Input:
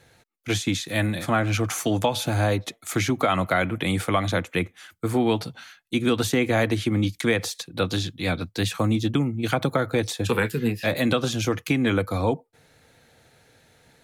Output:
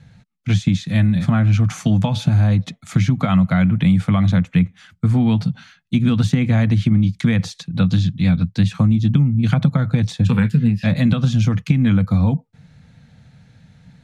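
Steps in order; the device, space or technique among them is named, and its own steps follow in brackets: jukebox (LPF 6100 Hz 12 dB/oct; resonant low shelf 260 Hz +12 dB, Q 3; compressor, threshold -11 dBFS, peak gain reduction 6.5 dB)

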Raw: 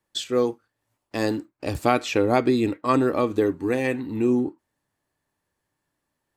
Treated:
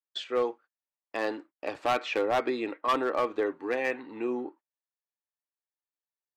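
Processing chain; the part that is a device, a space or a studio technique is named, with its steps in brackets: walkie-talkie (BPF 570–2600 Hz; hard clip -20 dBFS, distortion -10 dB; gate -50 dBFS, range -24 dB)

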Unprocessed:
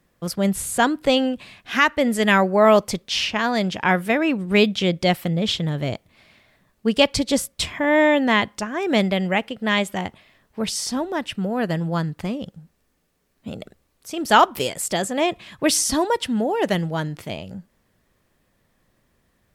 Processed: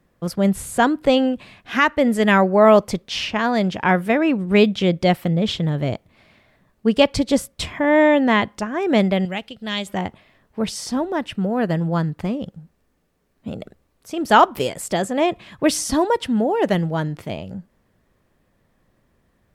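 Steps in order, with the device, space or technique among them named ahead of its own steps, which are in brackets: behind a face mask (high shelf 2100 Hz -8 dB); 9.25–9.87 graphic EQ 125/250/500/1000/2000/4000 Hz -4/-7/-8/-8/-7/+7 dB; gain +3 dB

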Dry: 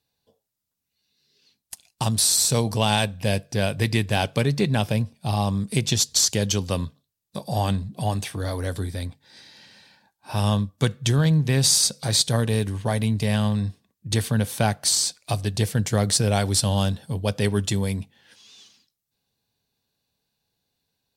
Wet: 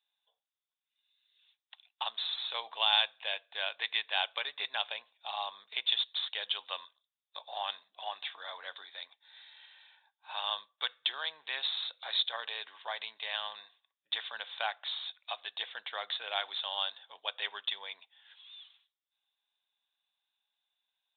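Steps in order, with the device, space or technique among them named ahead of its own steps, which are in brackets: musical greeting card (downsampling 8000 Hz; HPF 820 Hz 24 dB/oct; bell 3600 Hz +9.5 dB 0.3 oct); gain -6 dB

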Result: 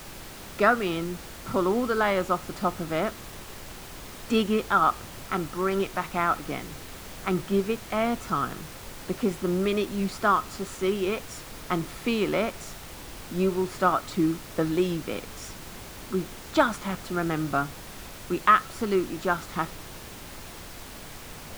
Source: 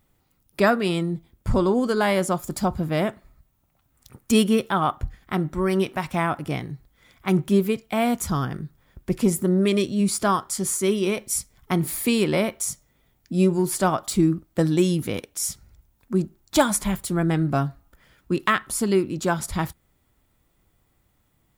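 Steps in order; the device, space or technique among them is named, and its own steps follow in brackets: horn gramophone (BPF 230–3600 Hz; bell 1300 Hz +10 dB 0.27 oct; wow and flutter; pink noise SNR 13 dB); gain -3 dB

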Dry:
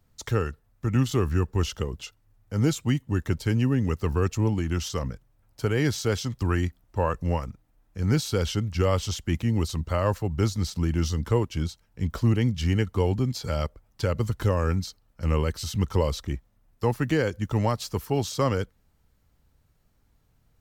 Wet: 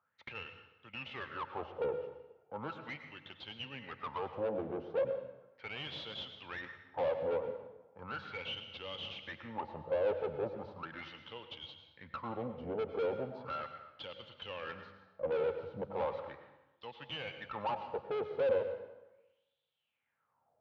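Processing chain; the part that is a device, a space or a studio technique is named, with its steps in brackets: wah-wah guitar rig (wah 0.37 Hz 440–3500 Hz, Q 7.6; tube stage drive 45 dB, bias 0.55; speaker cabinet 83–3500 Hz, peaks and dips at 87 Hz +8 dB, 140 Hz +7 dB, 220 Hz +4 dB, 530 Hz +9 dB, 860 Hz +5 dB, 1900 Hz -5 dB); plate-style reverb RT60 1 s, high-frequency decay 0.8×, pre-delay 85 ms, DRR 8 dB; gain +9 dB

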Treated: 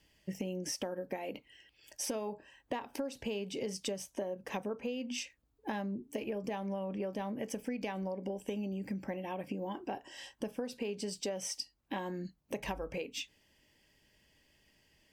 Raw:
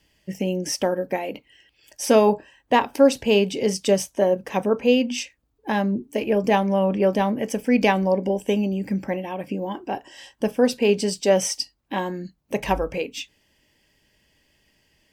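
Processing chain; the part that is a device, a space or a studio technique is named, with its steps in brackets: serial compression, leveller first (compressor 2.5:1, threshold -19 dBFS, peak gain reduction 7 dB; compressor 6:1, threshold -30 dBFS, peak gain reduction 13.5 dB); gain -5 dB

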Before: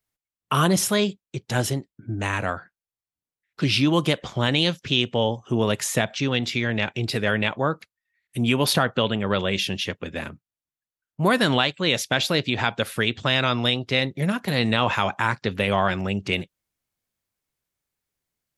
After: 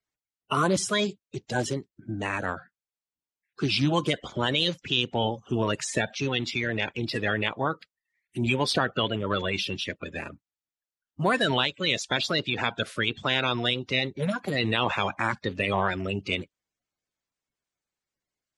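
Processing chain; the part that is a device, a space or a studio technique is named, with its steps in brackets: clip after many re-uploads (LPF 8900 Hz 24 dB/oct; bin magnitudes rounded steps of 30 dB); gain -3.5 dB

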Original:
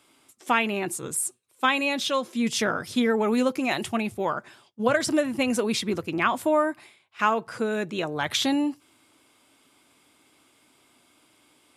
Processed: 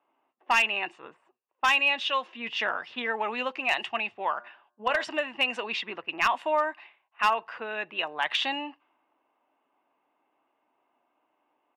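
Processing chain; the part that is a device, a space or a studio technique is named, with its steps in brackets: megaphone (BPF 670–2600 Hz; bell 2800 Hz +10 dB 0.42 oct; hard clip -15.5 dBFS, distortion -18 dB); 4.36–5.04 de-hum 119.3 Hz, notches 15; low-pass opened by the level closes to 700 Hz, open at -24.5 dBFS; comb 1.1 ms, depth 33%

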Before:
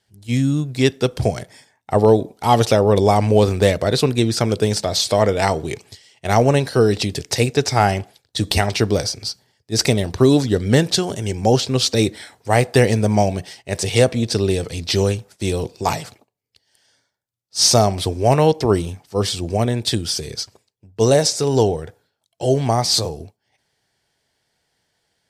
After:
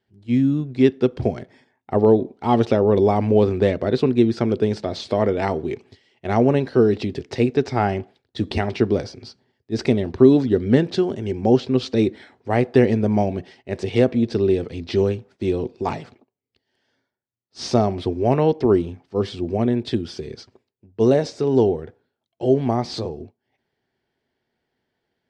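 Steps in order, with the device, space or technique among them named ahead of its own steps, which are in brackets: inside a cardboard box (LPF 2900 Hz 12 dB/oct; small resonant body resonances 250/360 Hz, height 10 dB, ringing for 45 ms); gain -6 dB

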